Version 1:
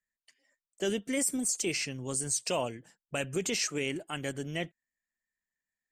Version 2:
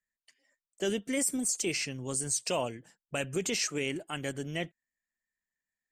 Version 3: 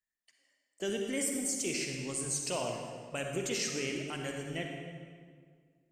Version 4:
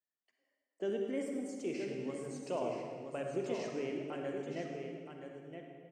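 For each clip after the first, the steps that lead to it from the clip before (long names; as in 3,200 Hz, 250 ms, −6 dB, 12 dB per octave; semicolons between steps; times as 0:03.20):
no processing that can be heard
convolution reverb RT60 1.9 s, pre-delay 42 ms, DRR 2 dB; level −4.5 dB
resonant band-pass 460 Hz, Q 0.7; single-tap delay 972 ms −7.5 dB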